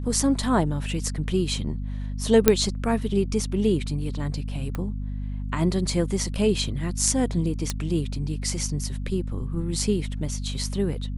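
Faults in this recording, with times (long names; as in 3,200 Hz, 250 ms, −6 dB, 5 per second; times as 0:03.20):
mains hum 50 Hz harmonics 5 −30 dBFS
0:02.48: click 0 dBFS
0:04.75: click
0:07.70: click −10 dBFS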